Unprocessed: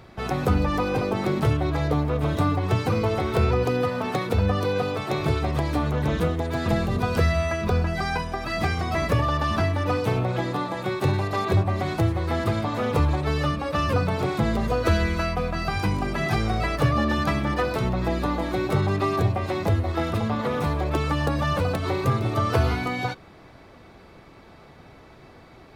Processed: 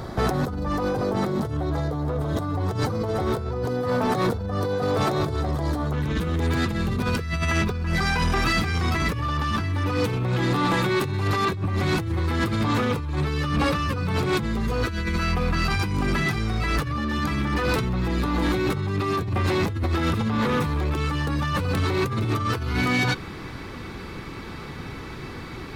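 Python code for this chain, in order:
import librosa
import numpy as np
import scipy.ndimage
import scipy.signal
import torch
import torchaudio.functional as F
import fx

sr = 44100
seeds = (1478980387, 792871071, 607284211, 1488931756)

y = fx.peak_eq(x, sr, hz=fx.steps((0.0, 2500.0), (5.93, 650.0)), db=-13.5, octaves=0.59)
y = fx.over_compress(y, sr, threshold_db=-31.0, ratio=-1.0)
y = 10.0 ** (-25.0 / 20.0) * np.tanh(y / 10.0 ** (-25.0 / 20.0))
y = y * 10.0 ** (8.5 / 20.0)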